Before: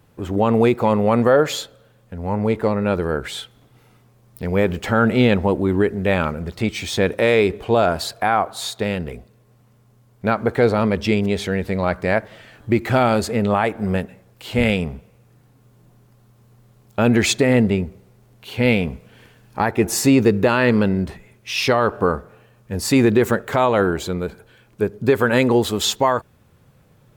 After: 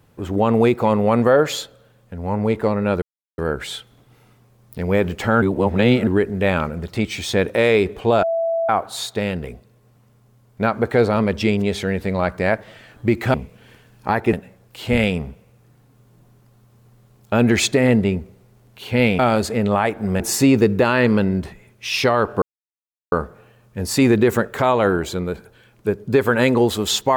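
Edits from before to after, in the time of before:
3.02 s: insert silence 0.36 s
5.06–5.71 s: reverse
7.87–8.33 s: bleep 663 Hz -17.5 dBFS
12.98–13.99 s: swap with 18.85–19.84 s
22.06 s: insert silence 0.70 s

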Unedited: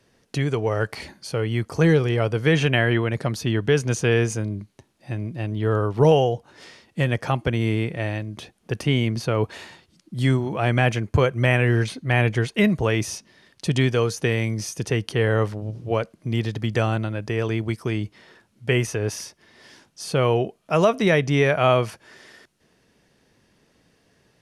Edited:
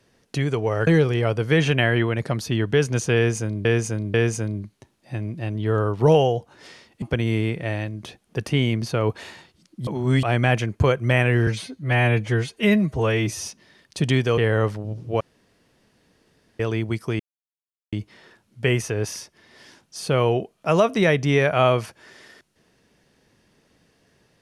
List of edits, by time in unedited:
0.87–1.82 s: delete
4.11–4.60 s: loop, 3 plays
6.99–7.36 s: delete
10.21–10.57 s: reverse
11.81–13.14 s: stretch 1.5×
14.05–15.15 s: delete
15.98–17.37 s: room tone
17.97 s: insert silence 0.73 s

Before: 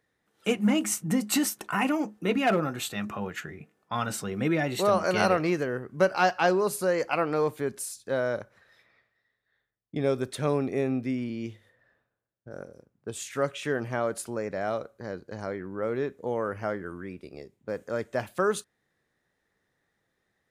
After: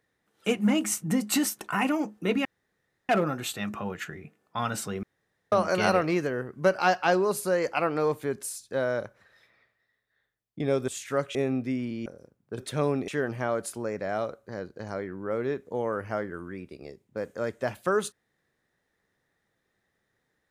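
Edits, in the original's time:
2.45 s: insert room tone 0.64 s
4.39–4.88 s: room tone
10.24–10.74 s: swap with 13.13–13.60 s
11.45–12.61 s: delete

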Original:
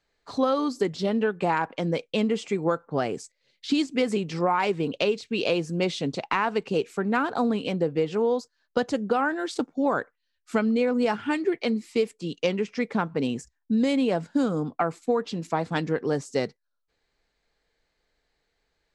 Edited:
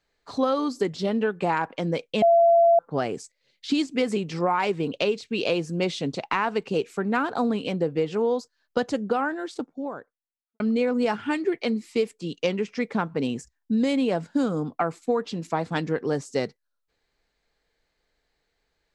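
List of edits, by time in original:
2.22–2.79 s: bleep 678 Hz -13.5 dBFS
8.90–10.60 s: studio fade out

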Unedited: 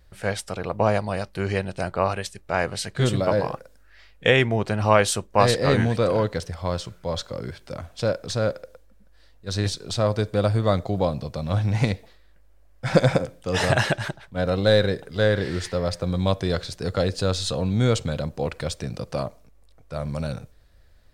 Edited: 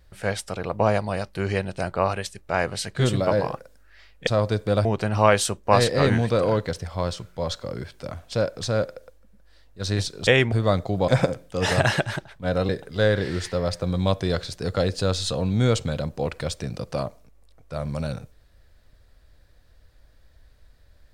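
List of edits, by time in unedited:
4.27–4.52 s: swap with 9.94–10.52 s
11.08–13.00 s: delete
14.61–14.89 s: delete

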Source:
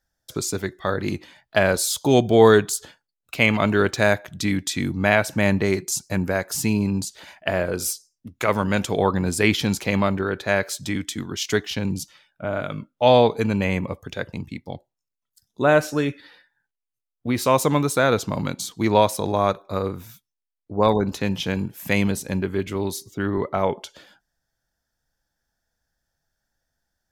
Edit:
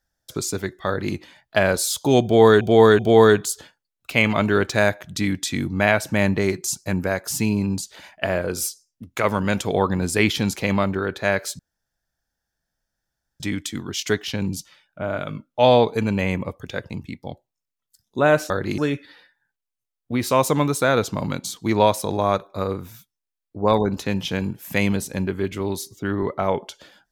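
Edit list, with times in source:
0.87–1.15 s: copy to 15.93 s
2.23–2.61 s: loop, 3 plays
10.83 s: insert room tone 1.81 s

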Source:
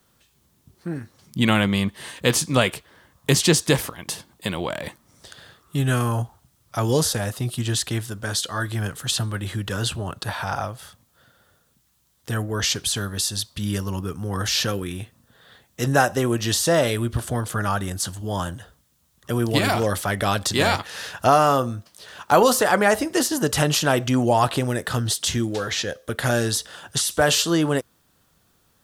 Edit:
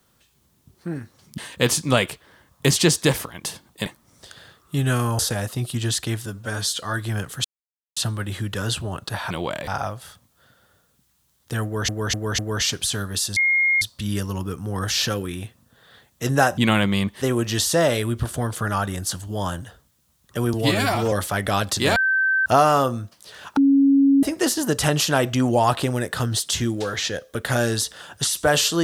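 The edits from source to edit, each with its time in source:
1.38–2.02 s: move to 16.15 s
4.50–4.87 s: move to 10.45 s
6.20–7.03 s: delete
8.10–8.45 s: stretch 1.5×
9.11 s: insert silence 0.52 s
12.41–12.66 s: loop, 4 plays
13.39 s: add tone 2.14 kHz -15.5 dBFS 0.45 s
19.47–19.86 s: stretch 1.5×
20.70–21.20 s: bleep 1.55 kHz -16.5 dBFS
22.31–22.97 s: bleep 276 Hz -12 dBFS

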